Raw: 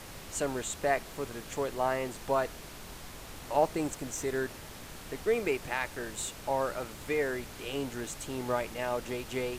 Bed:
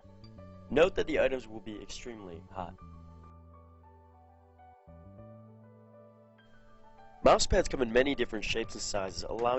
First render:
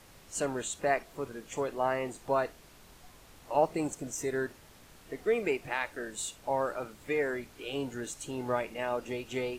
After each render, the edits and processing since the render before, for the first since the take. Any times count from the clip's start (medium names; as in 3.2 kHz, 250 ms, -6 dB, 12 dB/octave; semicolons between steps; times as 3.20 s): noise print and reduce 10 dB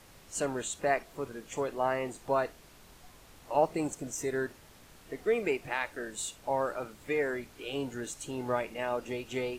no audible change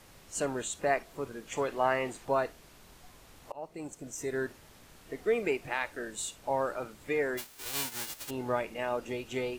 1.47–2.25 s: peaking EQ 2.1 kHz +5 dB 2.4 oct; 3.52–4.47 s: fade in, from -24 dB; 7.37–8.29 s: formants flattened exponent 0.1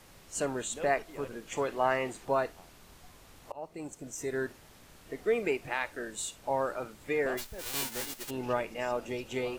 add bed -18 dB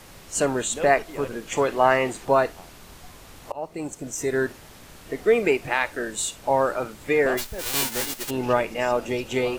trim +9.5 dB